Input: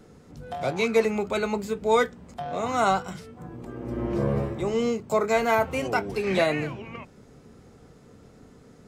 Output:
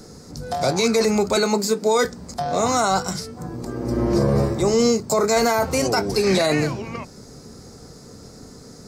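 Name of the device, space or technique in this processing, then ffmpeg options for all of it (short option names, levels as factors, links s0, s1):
over-bright horn tweeter: -filter_complex "[0:a]asettb=1/sr,asplit=3[s0][s1][s2];[s0]atrim=end=1.364[s3];[s1]atrim=start=1.36:end=2.05,asetpts=PTS-STARTPTS,afade=t=in:d=0.004:c=qsin,afade=t=out:st=0.686:d=0.004:c=qsin,highpass=f=180:w=0.5412,highpass=f=180:w=1.3066[s4];[s2]atrim=start=2.046[s5];[s3][s4]acrossfade=d=0.004:c1=hsin:c2=qsin[s6];[s6][s5]acrossfade=d=0.004:c1=qsin:c2=hsin,highshelf=f=3800:t=q:w=3:g=7.5,alimiter=limit=0.119:level=0:latency=1:release=13,volume=2.66"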